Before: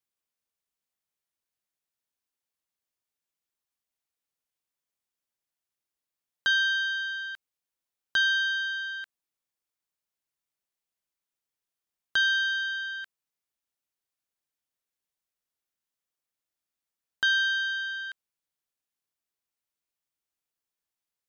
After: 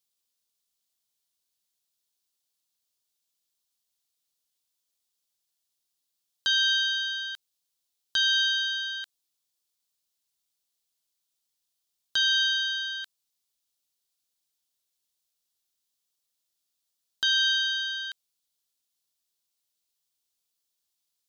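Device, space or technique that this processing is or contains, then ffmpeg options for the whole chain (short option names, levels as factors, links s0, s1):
over-bright horn tweeter: -af "highshelf=f=2800:t=q:w=1.5:g=8.5,alimiter=limit=0.178:level=0:latency=1:release=143"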